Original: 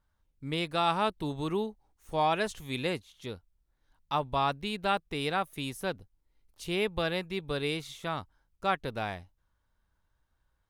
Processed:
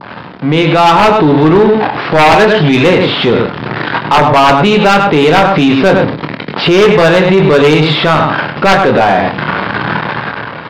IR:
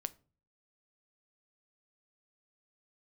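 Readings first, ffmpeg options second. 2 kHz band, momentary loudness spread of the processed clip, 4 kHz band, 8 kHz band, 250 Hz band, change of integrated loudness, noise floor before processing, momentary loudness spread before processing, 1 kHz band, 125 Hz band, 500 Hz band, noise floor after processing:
+25.0 dB, 9 LU, +22.0 dB, +19.0 dB, +26.5 dB, +23.5 dB, −76 dBFS, 11 LU, +23.0 dB, +25.5 dB, +26.0 dB, −26 dBFS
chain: -filter_complex "[0:a]aeval=exprs='val(0)+0.5*0.0141*sgn(val(0))':channel_layout=same,highpass=frequency=130:width=0.5412,highpass=frequency=130:width=1.3066,adynamicequalizer=threshold=0.00708:dfrequency=2200:dqfactor=1.5:tfrequency=2200:tqfactor=1.5:attack=5:release=100:ratio=0.375:range=1.5:mode=cutabove:tftype=bell,dynaudnorm=framelen=220:gausssize=7:maxgain=12.5dB,aresample=11025,aresample=44100,asplit=2[link_01][link_02];[link_02]adelay=26,volume=-7dB[link_03];[link_01][link_03]amix=inputs=2:normalize=0,aecho=1:1:101:0.376,asplit=2[link_04][link_05];[1:a]atrim=start_sample=2205,lowpass=2700,lowshelf=frequency=120:gain=-10[link_06];[link_05][link_06]afir=irnorm=-1:irlink=0,volume=10.5dB[link_07];[link_04][link_07]amix=inputs=2:normalize=0,acontrast=52,alimiter=level_in=6.5dB:limit=-1dB:release=50:level=0:latency=1,volume=-1dB"

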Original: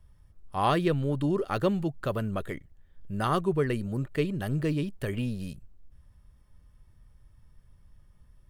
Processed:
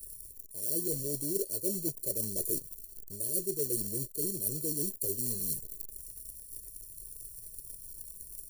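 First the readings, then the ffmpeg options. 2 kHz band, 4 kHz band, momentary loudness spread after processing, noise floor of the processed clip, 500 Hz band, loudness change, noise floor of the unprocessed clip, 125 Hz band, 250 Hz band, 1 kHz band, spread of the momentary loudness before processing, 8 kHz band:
below −35 dB, −5.0 dB, 13 LU, −51 dBFS, −8.0 dB, −3.5 dB, −60 dBFS, −13.0 dB, −10.5 dB, below −40 dB, 11 LU, +20.5 dB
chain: -filter_complex "[0:a]flanger=delay=5.6:depth=1.6:regen=-65:speed=0.48:shape=triangular,asplit=2[link_01][link_02];[link_02]aeval=exprs='(mod(9.44*val(0)+1,2)-1)/9.44':channel_layout=same,volume=-12dB[link_03];[link_01][link_03]amix=inputs=2:normalize=0,highshelf=frequency=10000:gain=11.5,acrossover=split=130|3000[link_04][link_05][link_06];[link_04]acompressor=threshold=-34dB:ratio=6[link_07];[link_07][link_05][link_06]amix=inputs=3:normalize=0,acrusher=bits=3:mode=log:mix=0:aa=0.000001,aexciter=amount=5.6:drive=6.3:freq=3900,areverse,acompressor=threshold=-35dB:ratio=12,areverse,firequalizer=gain_entry='entry(260,0);entry(370,11);entry(1400,-28);entry(4200,1);entry(10000,12)':delay=0.05:min_phase=1,afftfilt=real='re*eq(mod(floor(b*sr/1024/670),2),0)':imag='im*eq(mod(floor(b*sr/1024/670),2),0)':win_size=1024:overlap=0.75"

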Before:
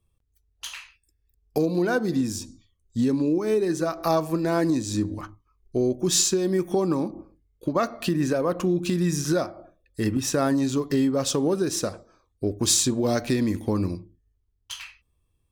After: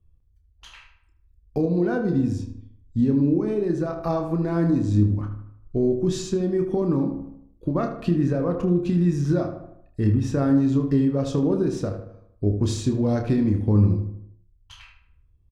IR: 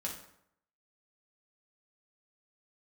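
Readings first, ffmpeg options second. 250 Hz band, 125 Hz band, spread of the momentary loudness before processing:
+2.5 dB, +7.5 dB, 16 LU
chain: -filter_complex "[0:a]aemphasis=mode=reproduction:type=riaa,asplit=2[link_01][link_02];[link_02]adelay=29,volume=-7.5dB[link_03];[link_01][link_03]amix=inputs=2:normalize=0,asplit=2[link_04][link_05];[link_05]adelay=77,lowpass=frequency=2800:poles=1,volume=-8dB,asplit=2[link_06][link_07];[link_07]adelay=77,lowpass=frequency=2800:poles=1,volume=0.51,asplit=2[link_08][link_09];[link_09]adelay=77,lowpass=frequency=2800:poles=1,volume=0.51,asplit=2[link_10][link_11];[link_11]adelay=77,lowpass=frequency=2800:poles=1,volume=0.51,asplit=2[link_12][link_13];[link_13]adelay=77,lowpass=frequency=2800:poles=1,volume=0.51,asplit=2[link_14][link_15];[link_15]adelay=77,lowpass=frequency=2800:poles=1,volume=0.51[link_16];[link_06][link_08][link_10][link_12][link_14][link_16]amix=inputs=6:normalize=0[link_17];[link_04][link_17]amix=inputs=2:normalize=0,volume=-5.5dB"

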